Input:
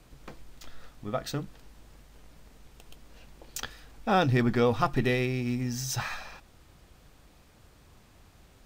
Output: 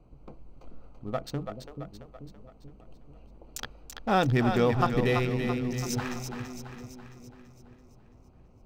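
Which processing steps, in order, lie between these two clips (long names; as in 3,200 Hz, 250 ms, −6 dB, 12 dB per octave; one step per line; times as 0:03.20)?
adaptive Wiener filter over 25 samples
echo with a time of its own for lows and highs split 440 Hz, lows 435 ms, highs 334 ms, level −6.5 dB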